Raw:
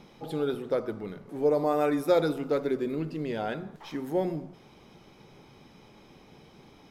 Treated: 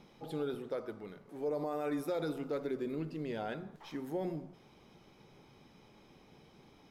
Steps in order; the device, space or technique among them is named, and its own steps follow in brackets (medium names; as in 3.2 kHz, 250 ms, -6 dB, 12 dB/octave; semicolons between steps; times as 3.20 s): 0.68–1.48 s: bass shelf 330 Hz -6 dB; clipper into limiter (hard clipper -13.5 dBFS, distortion -41 dB; peak limiter -21 dBFS, peak gain reduction 7.5 dB); trim -6.5 dB